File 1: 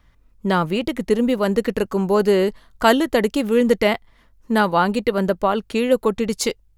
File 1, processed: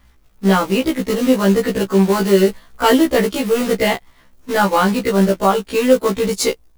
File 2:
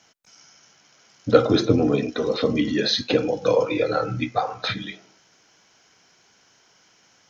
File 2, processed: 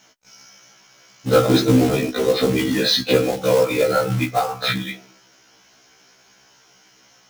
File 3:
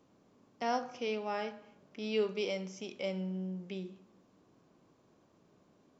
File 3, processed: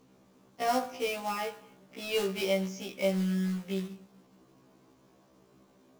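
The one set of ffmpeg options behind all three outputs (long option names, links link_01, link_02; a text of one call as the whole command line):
ffmpeg -i in.wav -af "acrusher=bits=3:mode=log:mix=0:aa=0.000001,acontrast=75,afftfilt=real='re*1.73*eq(mod(b,3),0)':imag='im*1.73*eq(mod(b,3),0)':win_size=2048:overlap=0.75" out.wav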